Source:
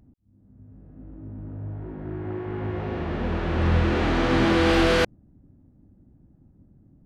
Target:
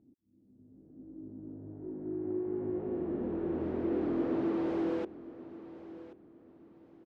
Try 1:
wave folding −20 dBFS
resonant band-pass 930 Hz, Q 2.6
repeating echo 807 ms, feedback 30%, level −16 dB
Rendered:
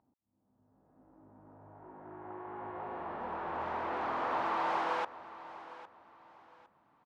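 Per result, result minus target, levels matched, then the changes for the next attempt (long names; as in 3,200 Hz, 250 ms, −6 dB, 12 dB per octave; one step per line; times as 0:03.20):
1,000 Hz band +16.0 dB; echo 274 ms early
change: resonant band-pass 330 Hz, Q 2.6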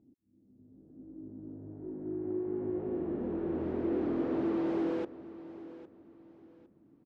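echo 274 ms early
change: repeating echo 1,081 ms, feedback 30%, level −16 dB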